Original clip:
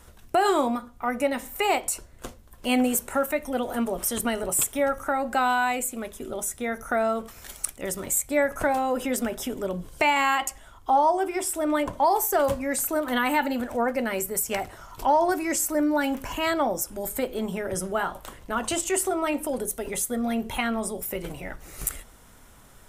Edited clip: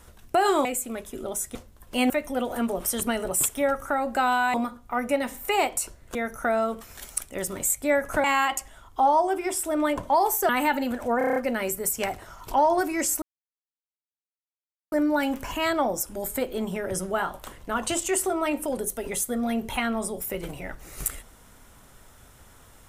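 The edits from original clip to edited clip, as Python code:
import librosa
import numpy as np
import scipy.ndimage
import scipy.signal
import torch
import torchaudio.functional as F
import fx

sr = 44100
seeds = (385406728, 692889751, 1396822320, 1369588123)

y = fx.edit(x, sr, fx.swap(start_s=0.65, length_s=1.61, other_s=5.72, other_length_s=0.9),
    fx.cut(start_s=2.81, length_s=0.47),
    fx.cut(start_s=8.71, length_s=1.43),
    fx.cut(start_s=12.39, length_s=0.79),
    fx.stutter(start_s=13.87, slice_s=0.03, count=7),
    fx.insert_silence(at_s=15.73, length_s=1.7), tone=tone)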